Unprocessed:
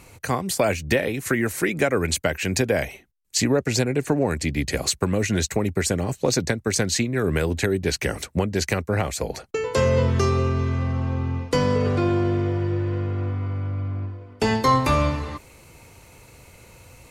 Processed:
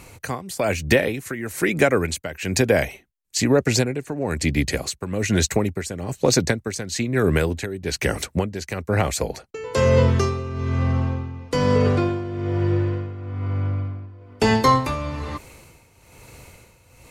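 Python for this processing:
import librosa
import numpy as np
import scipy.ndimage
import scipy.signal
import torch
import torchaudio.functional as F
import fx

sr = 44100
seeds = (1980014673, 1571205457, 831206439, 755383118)

y = x * (1.0 - 0.75 / 2.0 + 0.75 / 2.0 * np.cos(2.0 * np.pi * 1.1 * (np.arange(len(x)) / sr)))
y = y * librosa.db_to_amplitude(4.0)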